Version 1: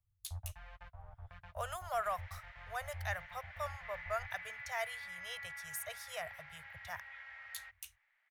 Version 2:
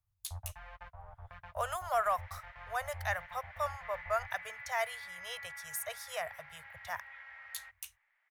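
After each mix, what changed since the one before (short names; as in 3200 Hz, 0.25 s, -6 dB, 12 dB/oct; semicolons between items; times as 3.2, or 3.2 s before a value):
speech: add tone controls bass -2 dB, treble +4 dB; second sound -4.0 dB; master: add ten-band EQ 500 Hz +4 dB, 1000 Hz +6 dB, 2000 Hz +3 dB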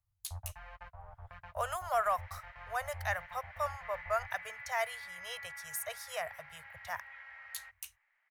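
master: add notch 3500 Hz, Q 18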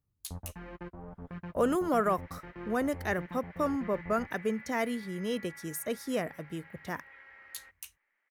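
second sound -3.5 dB; master: remove Chebyshev band-stop 110–670 Hz, order 3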